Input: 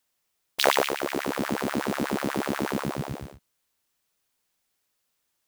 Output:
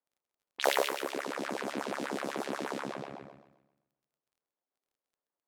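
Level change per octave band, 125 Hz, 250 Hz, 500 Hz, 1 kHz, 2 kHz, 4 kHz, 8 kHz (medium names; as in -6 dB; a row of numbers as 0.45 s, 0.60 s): -15.5 dB, -10.0 dB, -5.5 dB, -6.5 dB, -6.5 dB, -7.5 dB, -7.0 dB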